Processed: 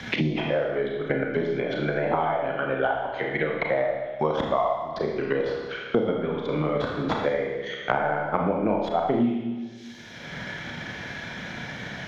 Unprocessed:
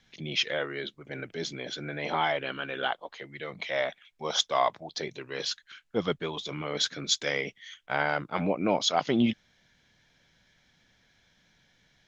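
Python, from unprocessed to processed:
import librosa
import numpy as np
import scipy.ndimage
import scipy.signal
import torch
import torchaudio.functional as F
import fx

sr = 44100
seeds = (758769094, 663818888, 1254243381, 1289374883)

y = fx.tracing_dist(x, sr, depth_ms=0.047)
y = scipy.signal.sosfilt(scipy.signal.butter(2, 61.0, 'highpass', fs=sr, output='sos'), y)
y = fx.transient(y, sr, attack_db=9, sustain_db=-7)
y = fx.env_lowpass_down(y, sr, base_hz=1100.0, full_db=-29.0)
y = fx.rev_schroeder(y, sr, rt60_s=0.89, comb_ms=26, drr_db=-0.5)
y = fx.band_squash(y, sr, depth_pct=100)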